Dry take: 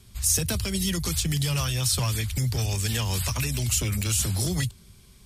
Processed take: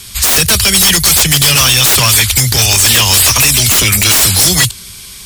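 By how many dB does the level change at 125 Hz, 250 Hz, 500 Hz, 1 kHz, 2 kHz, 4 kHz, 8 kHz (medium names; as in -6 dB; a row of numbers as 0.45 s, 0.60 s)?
+9.5 dB, +10.5 dB, +14.5 dB, +20.0 dB, +22.5 dB, +22.0 dB, +19.0 dB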